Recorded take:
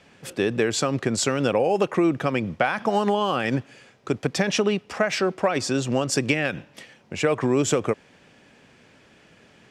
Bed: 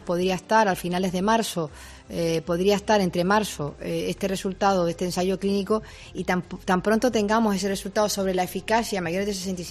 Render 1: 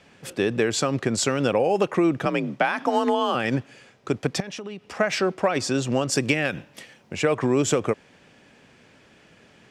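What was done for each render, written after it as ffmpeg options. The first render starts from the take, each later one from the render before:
-filter_complex "[0:a]asettb=1/sr,asplit=3[s0][s1][s2];[s0]atrim=end=2.254[s3];[s1]atrim=start=2.25:end=3.35,asetpts=PTS-STARTPTS,afade=t=in:d=0.004:c=qsin,afade=t=out:st=1.096:d=0.004:c=qsin,afreqshift=43[s4];[s2]atrim=start=3.346[s5];[s3][s4]acrossfade=d=0.004:c1=hsin:c2=qsin[s6];[s6][s5]acrossfade=d=0.004:c1=qsin:c2=hsin,asettb=1/sr,asplit=3[s7][s8][s9];[s7]atrim=end=4.404[s10];[s8]atrim=start=4.4:end=4.99,asetpts=PTS-STARTPTS,afade=t=in:d=0.004:c=qsin,afade=t=out:st=0.586:d=0.004:c=qsin,acompressor=threshold=0.02:ratio=4:attack=3.2:release=140:knee=1:detection=peak[s11];[s9]atrim=start=4.986[s12];[s10][s11]acrossfade=d=0.004:c1=hsin:c2=qsin[s13];[s13][s12]acrossfade=d=0.004:c1=qsin:c2=hsin,asettb=1/sr,asplit=3[s14][s15][s16];[s14]atrim=end=6.154[s17];[s15]atrim=start=6.15:end=7.16,asetpts=PTS-STARTPTS,afade=t=in:d=0.004:c=qsin,afade=t=out:st=1.006:d=0.004:c=qsin,highshelf=f=10000:g=8[s18];[s16]atrim=start=7.156[s19];[s17][s18]acrossfade=d=0.004:c1=hsin:c2=qsin[s20];[s20][s19]acrossfade=d=0.004:c1=qsin:c2=hsin"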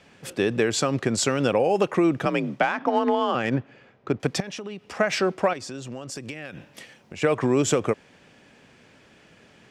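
-filter_complex "[0:a]asettb=1/sr,asplit=3[s0][s1][s2];[s0]atrim=end=2.634[s3];[s1]atrim=start=2.63:end=4.2,asetpts=PTS-STARTPTS,afade=t=in:d=0.004:c=qsin,afade=t=out:st=1.566:d=0.004:c=qsin,adynamicsmooth=sensitivity=1:basefreq=2600[s4];[s2]atrim=start=4.196[s5];[s3][s4]acrossfade=d=0.004:c1=hsin:c2=qsin[s6];[s6][s5]acrossfade=d=0.004:c1=qsin:c2=hsin,asettb=1/sr,asplit=3[s7][s8][s9];[s7]atrim=end=5.534[s10];[s8]atrim=start=5.53:end=7.22,asetpts=PTS-STARTPTS,afade=t=in:d=0.004:c=qsin,afade=t=out:st=1.686:d=0.004:c=qsin,acompressor=threshold=0.0158:ratio=3:attack=3.2:release=140:knee=1:detection=peak[s11];[s9]atrim=start=7.216[s12];[s10][s11]acrossfade=d=0.004:c1=hsin:c2=qsin[s13];[s13][s12]acrossfade=d=0.004:c1=qsin:c2=hsin"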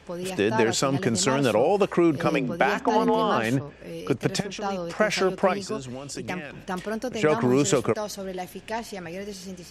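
-filter_complex "[1:a]volume=0.355[s0];[0:a][s0]amix=inputs=2:normalize=0"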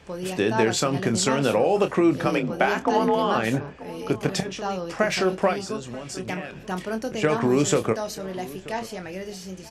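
-filter_complex "[0:a]asplit=2[s0][s1];[s1]adelay=27,volume=0.355[s2];[s0][s2]amix=inputs=2:normalize=0,asplit=2[s3][s4];[s4]adelay=932.9,volume=0.126,highshelf=f=4000:g=-21[s5];[s3][s5]amix=inputs=2:normalize=0"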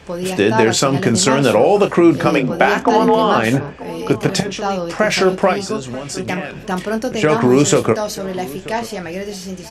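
-af "volume=2.66,alimiter=limit=0.891:level=0:latency=1"

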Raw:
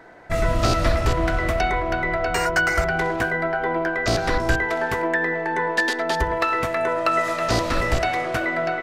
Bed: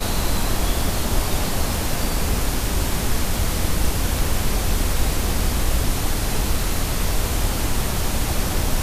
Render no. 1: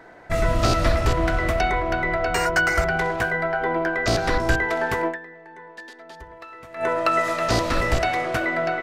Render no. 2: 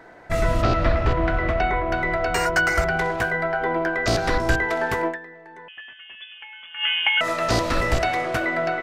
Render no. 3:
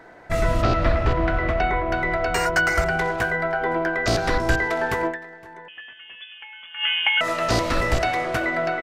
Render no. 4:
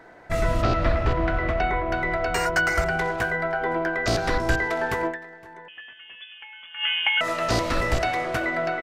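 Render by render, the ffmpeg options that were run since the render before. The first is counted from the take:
-filter_complex "[0:a]asettb=1/sr,asplit=3[s0][s1][s2];[s0]atrim=end=2.974[s3];[s1]atrim=start=2.97:end=3.61,asetpts=PTS-STARTPTS,afade=t=in:d=0.004:c=qsin,afade=t=out:st=0.636:d=0.004:c=qsin,equalizer=f=290:w=4.1:g=-12[s4];[s2]atrim=start=3.606[s5];[s3][s4]acrossfade=d=0.004:c1=hsin:c2=qsin[s6];[s6][s5]acrossfade=d=0.004:c1=qsin:c2=hsin,asplit=3[s7][s8][s9];[s7]atrim=end=5.57,asetpts=PTS-STARTPTS,afade=t=out:st=5.08:d=0.49:c=exp:silence=0.105925[s10];[s8]atrim=start=5.57:end=6.35,asetpts=PTS-STARTPTS,volume=0.106[s11];[s9]atrim=start=6.35,asetpts=PTS-STARTPTS,afade=t=in:d=0.49:c=exp:silence=0.105925[s12];[s10][s11][s12]concat=n=3:v=0:a=1"
-filter_complex "[0:a]asplit=3[s0][s1][s2];[s0]afade=t=out:st=0.61:d=0.02[s3];[s1]lowpass=2900,afade=t=in:st=0.61:d=0.02,afade=t=out:st=1.91:d=0.02[s4];[s2]afade=t=in:st=1.91:d=0.02[s5];[s3][s4][s5]amix=inputs=3:normalize=0,asettb=1/sr,asplit=3[s6][s7][s8];[s6]atrim=end=5.684[s9];[s7]atrim=start=5.68:end=7.21,asetpts=PTS-STARTPTS,afade=t=in:d=0.004:c=qsin,afade=t=out:st=1.526:d=0.004:c=qsin,lowpass=f=3000:t=q:w=0.5098,lowpass=f=3000:t=q:w=0.6013,lowpass=f=3000:t=q:w=0.9,lowpass=f=3000:t=q:w=2.563,afreqshift=-3500[s10];[s8]atrim=start=7.206[s11];[s9][s10]acrossfade=d=0.004:c1=hsin:c2=qsin[s12];[s12][s11]acrossfade=d=0.004:c1=qsin:c2=hsin"
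-af "aecho=1:1:515:0.0668"
-af "volume=0.794"

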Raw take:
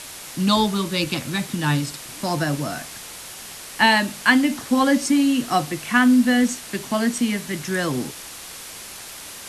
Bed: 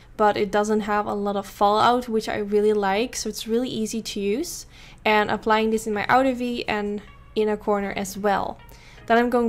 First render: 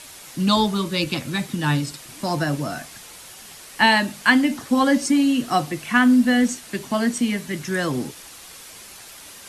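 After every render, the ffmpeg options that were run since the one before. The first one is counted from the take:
-af "afftdn=nr=6:nf=-38"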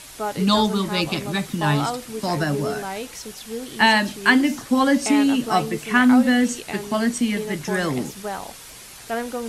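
-filter_complex "[1:a]volume=0.376[s0];[0:a][s0]amix=inputs=2:normalize=0"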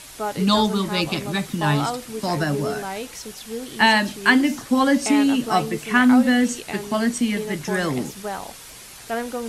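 -af anull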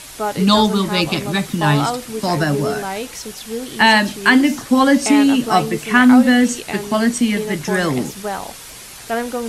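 -af "volume=1.78,alimiter=limit=0.891:level=0:latency=1"

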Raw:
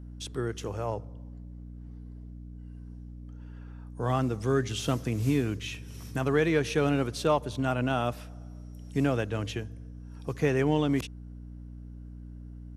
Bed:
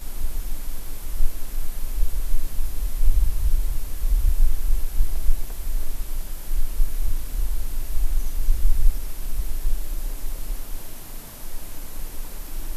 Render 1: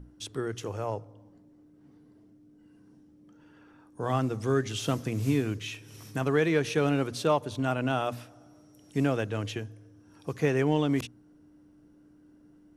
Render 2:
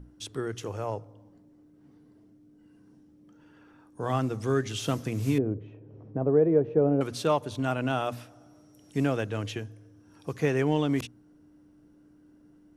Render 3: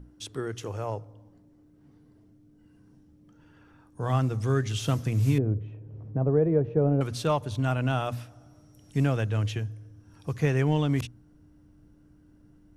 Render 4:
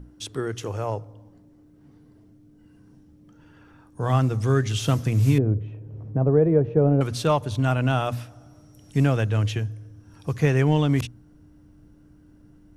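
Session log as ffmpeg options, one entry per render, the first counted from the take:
-af "bandreject=f=60:t=h:w=6,bandreject=f=120:t=h:w=6,bandreject=f=180:t=h:w=6,bandreject=f=240:t=h:w=6"
-filter_complex "[0:a]asettb=1/sr,asplit=3[s0][s1][s2];[s0]atrim=end=5.384[s3];[s1]atrim=start=5.38:end=7.01,asetpts=PTS-STARTPTS,afade=t=in:d=0.004:c=qsin,afade=t=out:st=1.626:d=0.004:c=qsin,lowpass=f=560:t=q:w=1.7[s4];[s2]atrim=start=7.006[s5];[s3][s4]acrossfade=d=0.004:c1=hsin:c2=qsin[s6];[s6][s5]acrossfade=d=0.004:c1=qsin:c2=hsin"
-af "asubboost=boost=4:cutoff=140"
-af "volume=1.68"

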